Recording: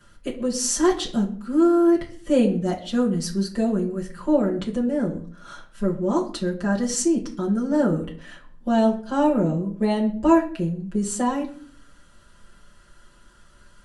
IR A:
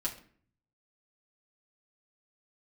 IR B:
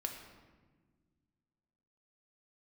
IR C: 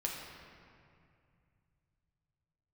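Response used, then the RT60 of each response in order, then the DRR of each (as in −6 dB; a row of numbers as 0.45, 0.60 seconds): A; 0.50, 1.5, 2.4 seconds; −5.0, 2.5, −2.0 decibels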